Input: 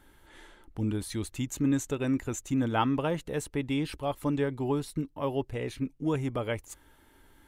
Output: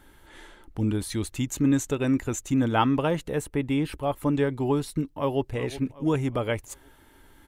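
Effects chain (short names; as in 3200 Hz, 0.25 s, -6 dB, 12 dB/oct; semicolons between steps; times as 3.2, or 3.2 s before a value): 3.27–4.35 dynamic EQ 4800 Hz, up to -7 dB, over -54 dBFS, Q 0.87; 5.08–5.54 echo throw 0.37 s, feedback 45%, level -14 dB; gain +4.5 dB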